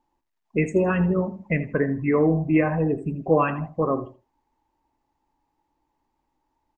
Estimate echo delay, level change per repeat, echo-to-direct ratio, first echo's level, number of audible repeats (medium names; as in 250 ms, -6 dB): 80 ms, -13.0 dB, -15.0 dB, -15.0 dB, 2